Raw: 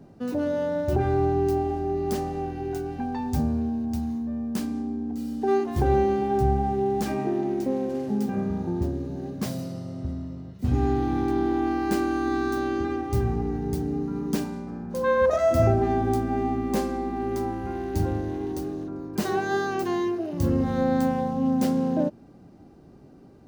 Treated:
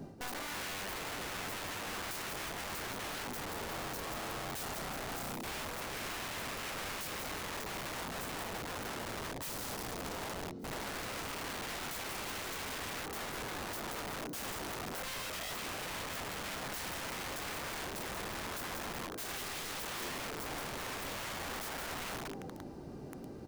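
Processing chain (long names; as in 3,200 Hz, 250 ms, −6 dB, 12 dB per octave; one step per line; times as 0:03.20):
mains-hum notches 60/120/180/240/300 Hz
reversed playback
downward compressor 10 to 1, threshold −38 dBFS, peak gain reduction 22 dB
reversed playback
high-shelf EQ 4,200 Hz +5 dB
on a send: echo with shifted repeats 182 ms, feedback 41%, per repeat +94 Hz, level −8.5 dB
on the sum: wrap-around overflow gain 39.5 dB
level +3.5 dB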